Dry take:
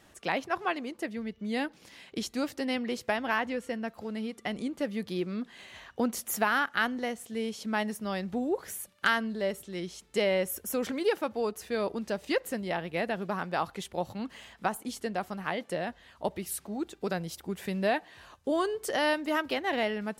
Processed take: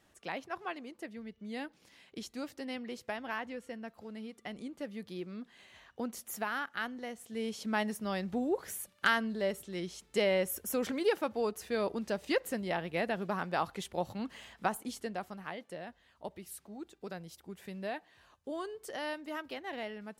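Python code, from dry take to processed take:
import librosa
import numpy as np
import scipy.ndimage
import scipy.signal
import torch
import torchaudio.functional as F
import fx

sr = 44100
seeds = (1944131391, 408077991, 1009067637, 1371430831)

y = fx.gain(x, sr, db=fx.line((7.05, -9.0), (7.53, -2.0), (14.75, -2.0), (15.68, -11.0)))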